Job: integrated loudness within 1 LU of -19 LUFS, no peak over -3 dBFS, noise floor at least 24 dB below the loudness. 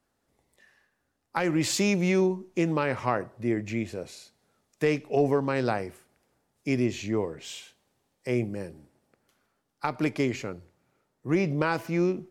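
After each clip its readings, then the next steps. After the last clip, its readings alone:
loudness -28.0 LUFS; peak -9.5 dBFS; loudness target -19.0 LUFS
-> gain +9 dB; limiter -3 dBFS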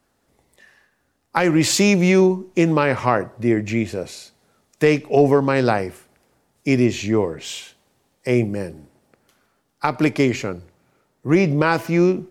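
loudness -19.0 LUFS; peak -3.0 dBFS; noise floor -68 dBFS

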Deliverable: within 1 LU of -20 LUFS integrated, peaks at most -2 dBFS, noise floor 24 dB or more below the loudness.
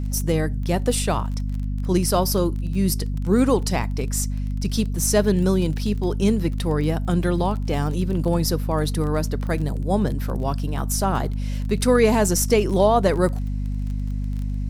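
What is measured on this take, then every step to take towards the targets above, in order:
ticks 24/s; hum 50 Hz; harmonics up to 250 Hz; hum level -23 dBFS; loudness -22.5 LUFS; peak -5.0 dBFS; loudness target -20.0 LUFS
-> de-click; de-hum 50 Hz, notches 5; gain +2.5 dB

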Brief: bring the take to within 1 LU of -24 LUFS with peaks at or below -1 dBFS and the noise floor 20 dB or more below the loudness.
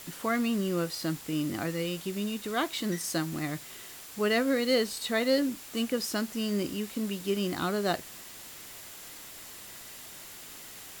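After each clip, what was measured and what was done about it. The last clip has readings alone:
steady tone 7300 Hz; tone level -57 dBFS; noise floor -46 dBFS; noise floor target -51 dBFS; loudness -30.5 LUFS; peak -14.5 dBFS; loudness target -24.0 LUFS
-> notch 7300 Hz, Q 30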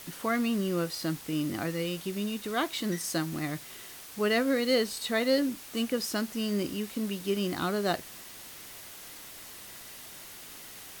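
steady tone none; noise floor -46 dBFS; noise floor target -51 dBFS
-> denoiser 6 dB, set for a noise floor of -46 dBFS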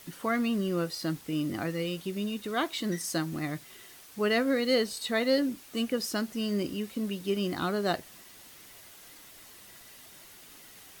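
noise floor -52 dBFS; loudness -30.5 LUFS; peak -14.5 dBFS; loudness target -24.0 LUFS
-> gain +6.5 dB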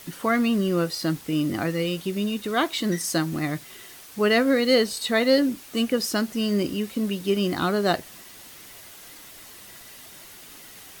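loudness -24.0 LUFS; peak -8.0 dBFS; noise floor -45 dBFS

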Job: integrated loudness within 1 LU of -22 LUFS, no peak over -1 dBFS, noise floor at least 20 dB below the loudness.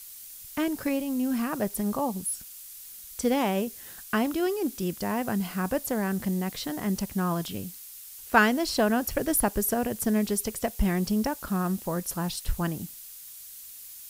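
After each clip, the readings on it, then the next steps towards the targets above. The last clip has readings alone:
noise floor -45 dBFS; noise floor target -48 dBFS; loudness -28.0 LUFS; peak -5.5 dBFS; loudness target -22.0 LUFS
-> denoiser 6 dB, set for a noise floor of -45 dBFS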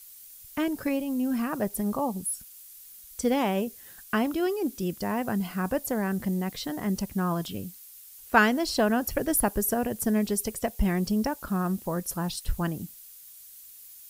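noise floor -49 dBFS; loudness -28.0 LUFS; peak -5.5 dBFS; loudness target -22.0 LUFS
-> gain +6 dB; limiter -1 dBFS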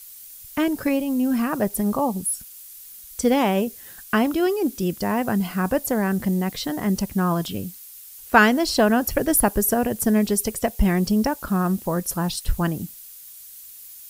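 loudness -22.0 LUFS; peak -1.0 dBFS; noise floor -43 dBFS

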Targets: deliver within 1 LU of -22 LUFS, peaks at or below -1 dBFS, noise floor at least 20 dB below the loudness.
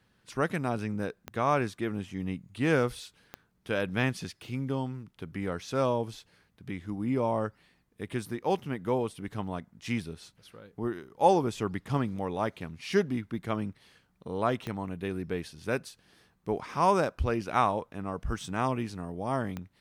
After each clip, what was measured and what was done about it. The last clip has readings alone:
clicks 4; loudness -31.5 LUFS; peak -9.0 dBFS; loudness target -22.0 LUFS
-> de-click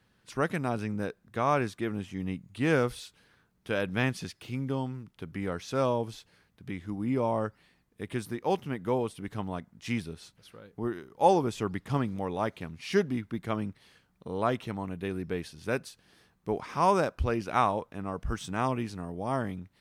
clicks 0; loudness -31.5 LUFS; peak -9.0 dBFS; loudness target -22.0 LUFS
-> gain +9.5 dB; limiter -1 dBFS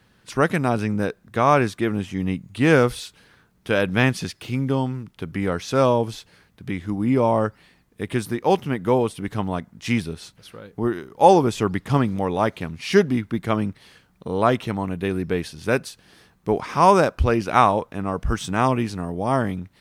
loudness -22.0 LUFS; peak -1.0 dBFS; noise floor -60 dBFS

